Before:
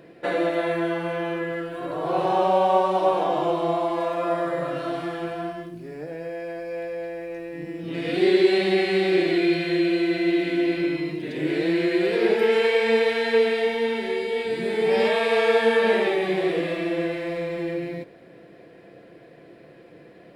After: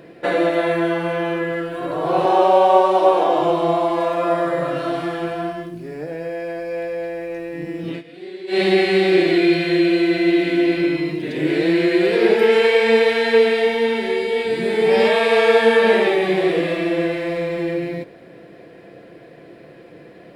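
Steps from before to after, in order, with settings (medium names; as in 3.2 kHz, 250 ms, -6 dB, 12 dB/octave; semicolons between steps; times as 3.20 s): 2.25–3.41 s: resonant low shelf 250 Hz -7 dB, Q 1.5; 7.89–8.61 s: dip -21 dB, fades 0.14 s; trim +5.5 dB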